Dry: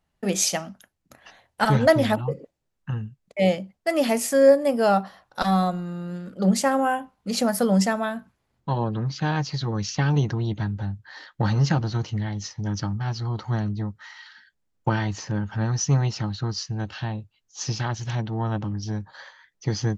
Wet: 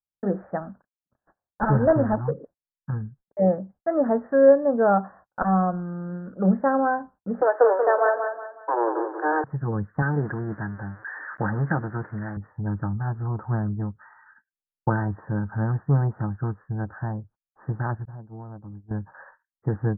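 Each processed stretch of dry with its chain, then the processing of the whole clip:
0.60–2.31 s: CVSD coder 16 kbps + level-controlled noise filter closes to 1.4 kHz, open at -16 dBFS + bass shelf 87 Hz +2.5 dB
7.41–9.44 s: waveshaping leveller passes 2 + steep high-pass 310 Hz 96 dB/octave + feedback delay 184 ms, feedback 35%, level -6.5 dB
10.02–12.37 s: zero-crossing glitches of -17 dBFS + frequency weighting D
18.05–18.91 s: expander -21 dBFS + low-pass 1.1 kHz + compression 12:1, threshold -35 dBFS
whole clip: gate -48 dBFS, range -30 dB; steep low-pass 1.7 kHz 96 dB/octave; dynamic bell 460 Hz, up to +3 dB, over -37 dBFS, Q 7.3

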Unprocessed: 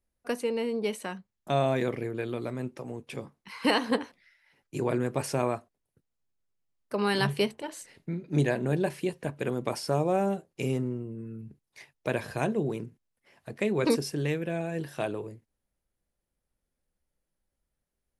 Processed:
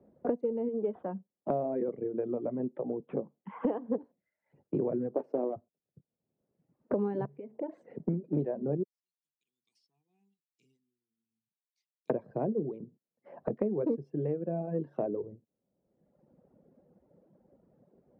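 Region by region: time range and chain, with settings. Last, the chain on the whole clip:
0.68–3.97 s: peaking EQ 87 Hz -7.5 dB 2 oct + careless resampling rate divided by 6×, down none, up filtered
5.14–5.56 s: block-companded coder 3-bit + high-pass 260 Hz 24 dB/octave + tilt shelf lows +5 dB, about 1.2 kHz
7.25–7.78 s: peaking EQ 2.2 kHz +8 dB 0.75 oct + compression 4:1, threshold -41 dBFS
8.83–12.10 s: inverse Chebyshev high-pass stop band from 1.5 kHz, stop band 60 dB + upward expansion, over -59 dBFS
whole clip: Chebyshev band-pass 170–580 Hz, order 2; reverb removal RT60 0.98 s; three bands compressed up and down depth 100%

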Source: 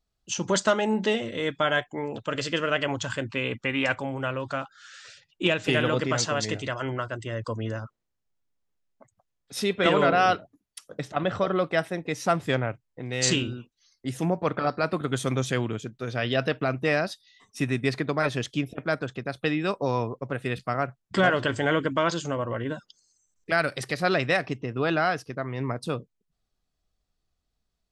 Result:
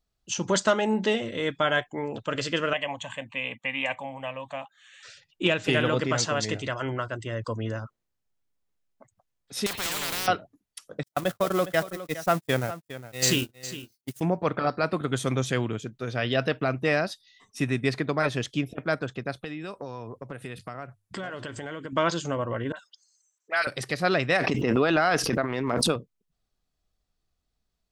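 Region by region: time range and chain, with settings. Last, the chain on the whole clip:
2.73–5.03 s: high-pass 230 Hz + static phaser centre 1.4 kHz, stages 6
9.66–10.28 s: block-companded coder 7-bit + compression 3:1, threshold -27 dBFS + spectrum-flattening compressor 10:1
11.03–14.21 s: zero-crossing glitches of -25.5 dBFS + gate -28 dBFS, range -55 dB + delay 410 ms -14 dB
19.44–21.93 s: peaking EQ 10 kHz +9.5 dB 0.57 oct + hum notches 50/100 Hz + compression 4:1, threshold -34 dBFS
22.72–23.67 s: high-pass 810 Hz + phase dispersion highs, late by 47 ms, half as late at 2.2 kHz
24.36–25.96 s: peaking EQ 110 Hz -13.5 dB 0.65 oct + transient shaper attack +7 dB, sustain +11 dB + swell ahead of each attack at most 25 dB/s
whole clip: none

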